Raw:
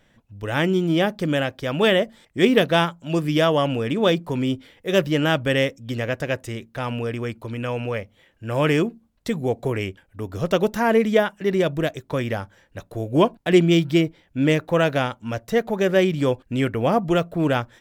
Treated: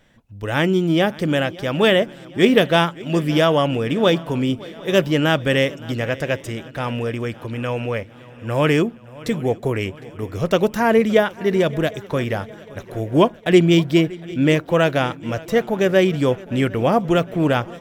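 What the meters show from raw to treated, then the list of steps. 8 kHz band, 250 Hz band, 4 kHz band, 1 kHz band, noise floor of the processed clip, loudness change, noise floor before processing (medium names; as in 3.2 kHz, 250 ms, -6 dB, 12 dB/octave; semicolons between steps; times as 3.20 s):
+2.5 dB, +2.5 dB, +2.5 dB, +2.5 dB, -42 dBFS, +2.5 dB, -61 dBFS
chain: shuffle delay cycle 757 ms, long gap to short 3:1, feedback 54%, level -21 dB; trim +2.5 dB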